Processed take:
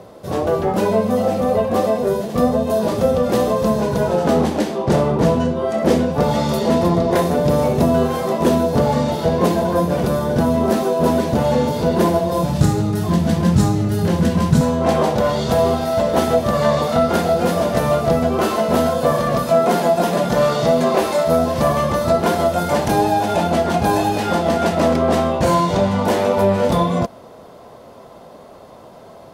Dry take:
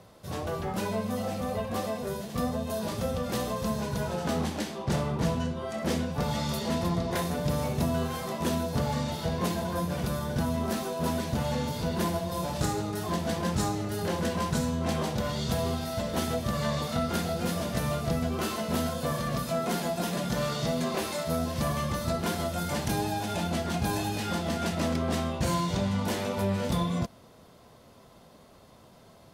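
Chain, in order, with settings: peaking EQ 450 Hz +11.5 dB 2.5 oct, from 12.43 s 140 Hz, from 14.61 s 610 Hz; trim +5.5 dB

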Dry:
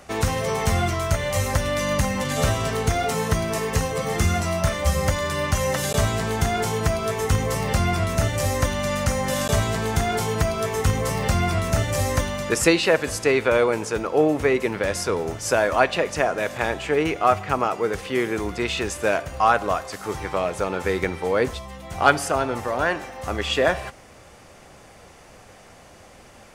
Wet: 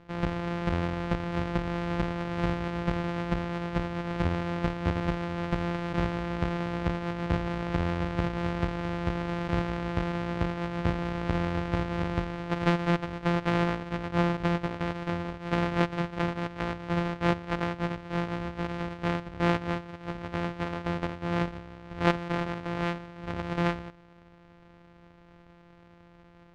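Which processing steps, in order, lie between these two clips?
sorted samples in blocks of 256 samples; low-pass 2.6 kHz 12 dB/octave; trim -7 dB

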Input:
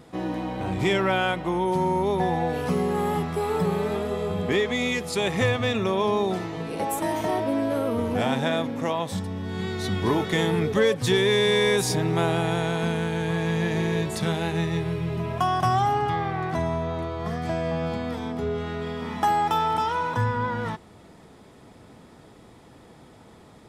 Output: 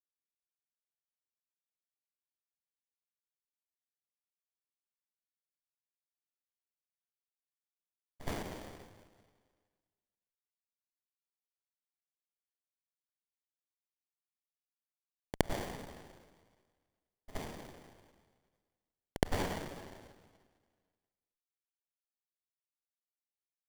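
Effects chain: spectral gate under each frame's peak -20 dB weak; high-order bell 560 Hz -15.5 dB; compression 4:1, threshold -55 dBFS, peak gain reduction 20.5 dB; resonant low-pass 1.6 kHz, resonance Q 2.1; companded quantiser 2-bit; pre-echo 68 ms -14.5 dB; plate-style reverb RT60 1.7 s, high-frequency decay 0.95×, pre-delay 85 ms, DRR -10 dB; sliding maximum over 33 samples; trim +15 dB

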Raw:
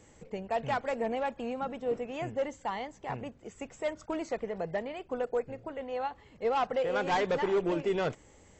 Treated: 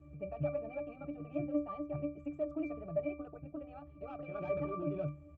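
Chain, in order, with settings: peak limiter -27 dBFS, peak gain reduction 5.5 dB; pitch-class resonator D, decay 0.44 s; tempo 1.6×; trim +16 dB

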